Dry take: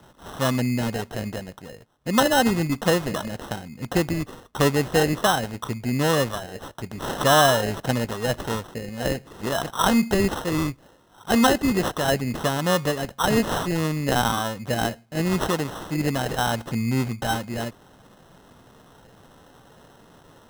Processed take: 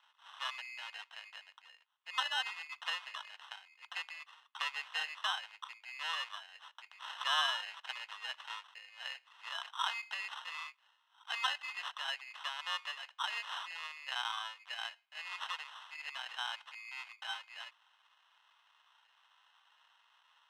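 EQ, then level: ladder high-pass 850 Hz, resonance 55%; synth low-pass 2800 Hz, resonance Q 2.7; differentiator; +4.0 dB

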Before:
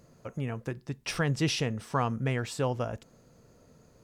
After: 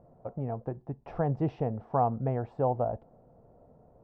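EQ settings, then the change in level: synth low-pass 750 Hz, resonance Q 4; low shelf 78 Hz +6 dB; -3.0 dB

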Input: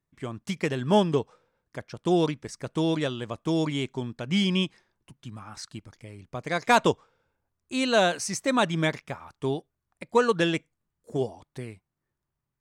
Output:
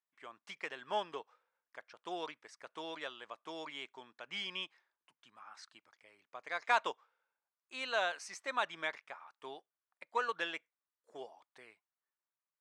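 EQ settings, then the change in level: HPF 990 Hz 12 dB/oct; high shelf 3700 Hz -10.5 dB; high shelf 8700 Hz -11.5 dB; -5.0 dB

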